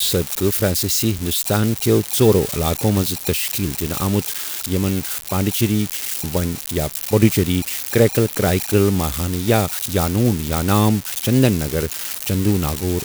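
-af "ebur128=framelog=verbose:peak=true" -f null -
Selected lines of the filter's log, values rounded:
Integrated loudness:
  I:         -18.8 LUFS
  Threshold: -28.8 LUFS
Loudness range:
  LRA:         2.9 LU
  Threshold: -38.8 LUFS
  LRA low:   -20.7 LUFS
  LRA high:  -17.8 LUFS
True peak:
  Peak:       -1.2 dBFS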